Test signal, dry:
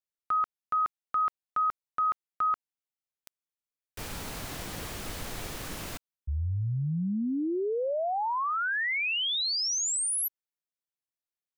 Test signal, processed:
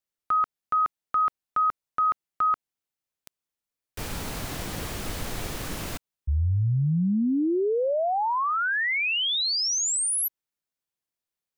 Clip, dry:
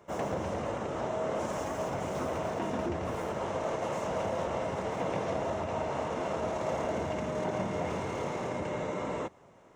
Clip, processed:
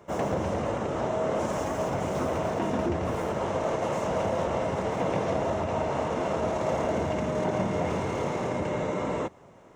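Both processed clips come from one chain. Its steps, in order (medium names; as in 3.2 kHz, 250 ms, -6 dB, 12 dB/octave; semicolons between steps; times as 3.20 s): bass shelf 490 Hz +3 dB; trim +3.5 dB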